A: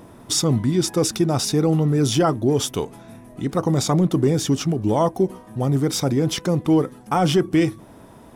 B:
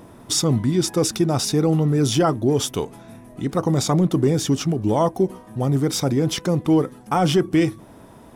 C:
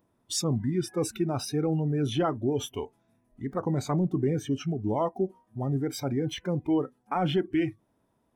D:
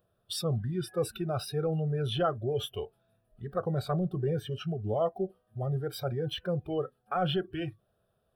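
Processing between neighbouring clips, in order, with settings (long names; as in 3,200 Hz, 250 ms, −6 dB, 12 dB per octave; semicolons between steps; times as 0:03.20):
no processing that can be heard
noise reduction from a noise print of the clip's start 19 dB; level −8 dB
phaser with its sweep stopped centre 1,400 Hz, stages 8; level +1.5 dB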